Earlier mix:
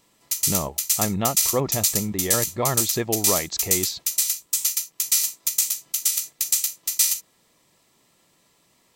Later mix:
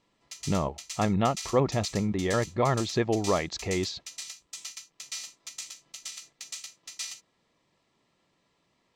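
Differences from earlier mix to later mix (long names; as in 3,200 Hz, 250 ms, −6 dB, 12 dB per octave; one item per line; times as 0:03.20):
background −6.5 dB
master: add high-frequency loss of the air 130 metres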